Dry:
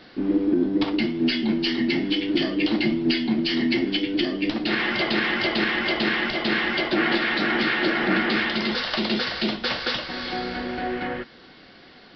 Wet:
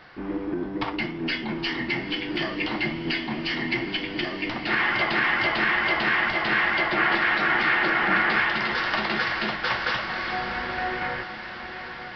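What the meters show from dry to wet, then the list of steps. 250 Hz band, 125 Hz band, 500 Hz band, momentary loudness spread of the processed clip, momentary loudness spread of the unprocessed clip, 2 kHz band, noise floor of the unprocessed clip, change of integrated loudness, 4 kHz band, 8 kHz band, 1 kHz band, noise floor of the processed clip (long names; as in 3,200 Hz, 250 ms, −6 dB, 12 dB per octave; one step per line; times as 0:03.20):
−8.0 dB, −2.0 dB, −4.5 dB, 9 LU, 7 LU, +3.0 dB, −49 dBFS, −1.0 dB, −4.0 dB, can't be measured, +4.0 dB, −37 dBFS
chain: graphic EQ with 10 bands 125 Hz +4 dB, 250 Hz −12 dB, 500 Hz −3 dB, 1,000 Hz +6 dB, 2,000 Hz +3 dB, 4,000 Hz −8 dB
feedback delay with all-pass diffusion 911 ms, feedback 64%, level −10.5 dB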